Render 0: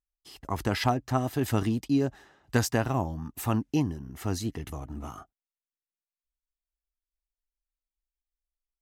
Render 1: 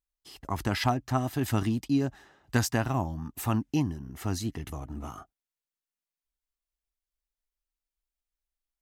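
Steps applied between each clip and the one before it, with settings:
dynamic equaliser 470 Hz, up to −6 dB, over −44 dBFS, Q 2.3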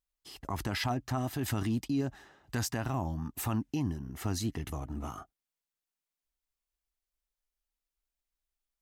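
brickwall limiter −23.5 dBFS, peak gain reduction 10.5 dB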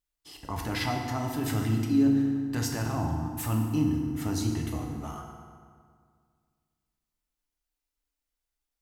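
feedback delay network reverb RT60 2 s, low-frequency decay 1.1×, high-frequency decay 0.65×, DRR 0.5 dB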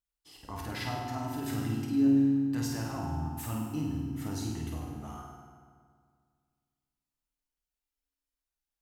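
flutter between parallel walls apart 8.7 metres, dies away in 0.64 s
level −7 dB

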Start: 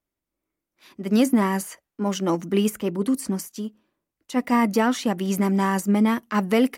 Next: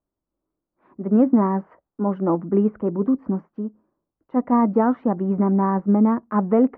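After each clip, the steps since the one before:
low-pass filter 1,200 Hz 24 dB per octave
level +2.5 dB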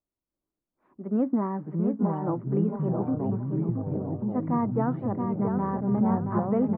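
repeating echo 675 ms, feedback 33%, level −6 dB
delay with pitch and tempo change per echo 341 ms, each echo −4 semitones, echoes 3
level −9 dB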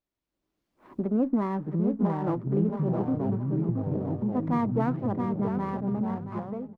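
fade-out on the ending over 1.55 s
camcorder AGC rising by 15 dB per second
windowed peak hold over 5 samples

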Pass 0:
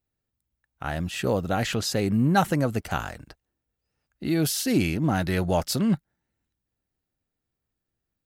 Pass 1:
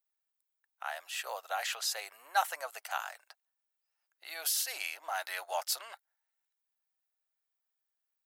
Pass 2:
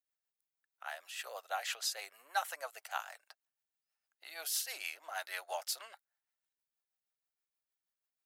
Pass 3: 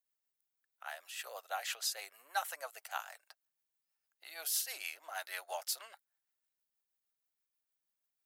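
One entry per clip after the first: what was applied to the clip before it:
Butterworth high-pass 680 Hz 36 dB per octave; high-shelf EQ 11,000 Hz +8 dB; level −5.5 dB
rotating-speaker cabinet horn 6.3 Hz; level −1.5 dB
high-shelf EQ 9,800 Hz +6.5 dB; level −1.5 dB

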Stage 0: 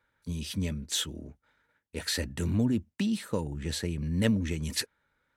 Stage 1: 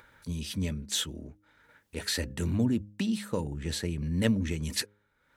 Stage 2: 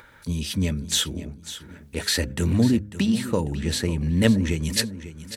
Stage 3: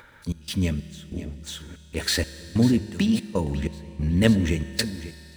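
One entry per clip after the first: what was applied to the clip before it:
hum removal 103.2 Hz, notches 5; upward compression, threshold −45 dBFS
repeating echo 546 ms, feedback 32%, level −13.5 dB; level +7.5 dB
running median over 3 samples; gate pattern "xx.xx..xx" 94 BPM −24 dB; on a send at −13.5 dB: convolution reverb RT60 3.4 s, pre-delay 5 ms

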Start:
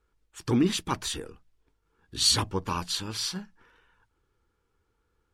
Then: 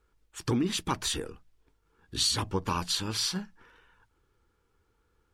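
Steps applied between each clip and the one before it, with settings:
downward compressor 6 to 1, threshold −27 dBFS, peak gain reduction 9 dB
level +2.5 dB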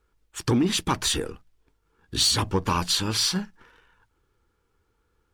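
leveller curve on the samples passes 1
level +3 dB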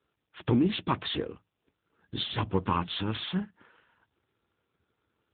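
level −2.5 dB
AMR narrowband 7.95 kbit/s 8,000 Hz

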